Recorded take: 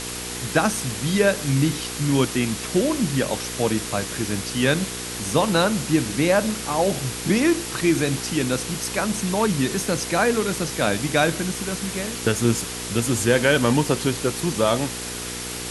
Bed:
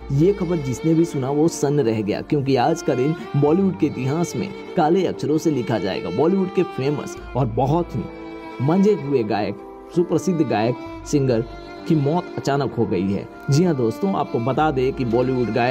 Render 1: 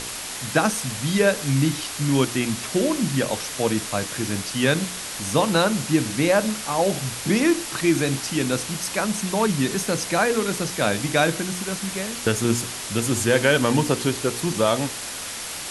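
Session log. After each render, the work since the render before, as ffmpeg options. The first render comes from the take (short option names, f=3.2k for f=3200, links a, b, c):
-af "bandreject=f=60:t=h:w=4,bandreject=f=120:t=h:w=4,bandreject=f=180:t=h:w=4,bandreject=f=240:t=h:w=4,bandreject=f=300:t=h:w=4,bandreject=f=360:t=h:w=4,bandreject=f=420:t=h:w=4,bandreject=f=480:t=h:w=4"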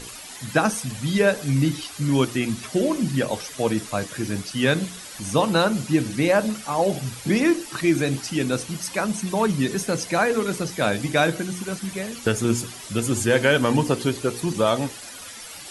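-af "afftdn=nr=12:nf=-33"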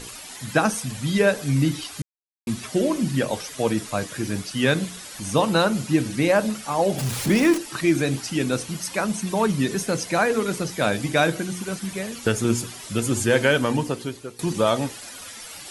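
-filter_complex "[0:a]asettb=1/sr,asplit=3[a][b][c];[a]atrim=end=6.984[d];[b]atrim=start=6.98:end=7.58,asetpts=PTS-STARTPTS,afade=t=in:d=0.004:c=qsin,afade=t=out:st=0.596:d=0.004:c=qsin,aeval=exprs='val(0)+0.5*0.0501*sgn(val(0))':c=same[e];[c]atrim=start=7.576[f];[d][e]acrossfade=d=0.004:c1=hsin:c2=qsin[g];[g][f]acrossfade=d=0.004:c1=qsin:c2=hsin,asplit=4[h][i][j][k];[h]atrim=end=2.02,asetpts=PTS-STARTPTS,afade=t=out:st=2.016:d=0.004:c=hsin[l];[i]atrim=start=2.02:end=2.47,asetpts=PTS-STARTPTS,volume=0[m];[j]atrim=start=2.47:end=14.39,asetpts=PTS-STARTPTS,afade=t=in:d=0.004:c=hsin,afade=t=out:st=10.95:d=0.97:silence=0.149624[n];[k]atrim=start=14.39,asetpts=PTS-STARTPTS,afade=t=in:d=0.004:c=hsin:silence=0.149624[o];[l][m][n][o]concat=n=4:v=0:a=1"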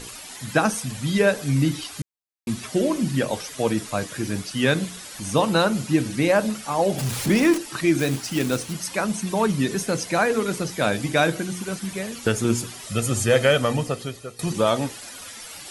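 -filter_complex "[0:a]asettb=1/sr,asplit=3[a][b][c];[a]atrim=end=7.994[d];[b]atrim=start=7.99:end=8.73,asetpts=PTS-STARTPTS,afade=t=in:d=0.004:c=qsin,afade=t=out:st=0.736:d=0.004:c=qsin,acrusher=bits=3:mode=log:mix=0:aa=0.000001[e];[c]atrim=start=8.726[f];[d][e]acrossfade=d=0.004:c1=hsin:c2=qsin[g];[g][f]acrossfade=d=0.004:c1=qsin:c2=hsin,asettb=1/sr,asplit=3[h][i][j];[h]atrim=end=12.864[k];[i]atrim=start=12.86:end=14.52,asetpts=PTS-STARTPTS,afade=t=in:d=0.004:c=qsin,afade=t=out:st=1.656:d=0.004:c=qsin,aecho=1:1:1.6:0.53,atrim=end_sample=73206[l];[j]atrim=start=14.516[m];[k][l]acrossfade=d=0.004:c1=hsin:c2=qsin[n];[n][m]acrossfade=d=0.004:c1=qsin:c2=hsin"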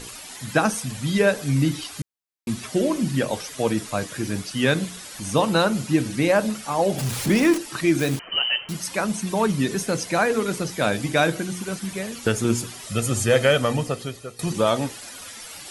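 -filter_complex "[0:a]asettb=1/sr,asplit=3[a][b][c];[a]atrim=end=8.194[d];[b]atrim=start=8.19:end=8.69,asetpts=PTS-STARTPTS,afade=t=in:d=0.004:c=qsin,afade=t=out:st=0.496:d=0.004:c=qsin,lowpass=f=2.7k:t=q:w=0.5098,lowpass=f=2.7k:t=q:w=0.6013,lowpass=f=2.7k:t=q:w=0.9,lowpass=f=2.7k:t=q:w=2.563,afreqshift=-3200[e];[c]atrim=start=8.686[f];[d][e]acrossfade=d=0.004:c1=hsin:c2=qsin[g];[g][f]acrossfade=d=0.004:c1=qsin:c2=hsin"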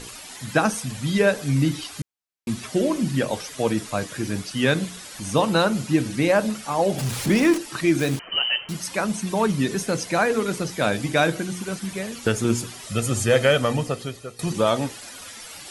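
-af "highshelf=f=12k:g=-4.5"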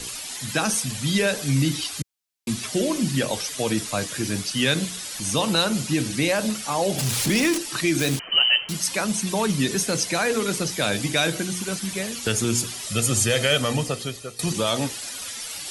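-filter_complex "[0:a]acrossover=split=110|2600[a][b][c];[b]alimiter=limit=-15dB:level=0:latency=1[d];[c]acontrast=83[e];[a][d][e]amix=inputs=3:normalize=0"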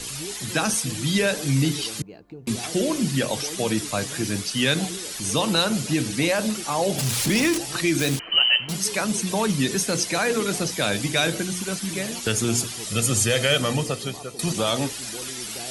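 -filter_complex "[1:a]volume=-21dB[a];[0:a][a]amix=inputs=2:normalize=0"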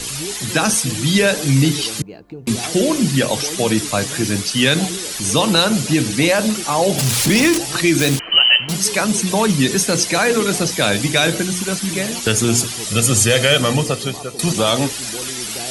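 -af "volume=7dB,alimiter=limit=-2dB:level=0:latency=1"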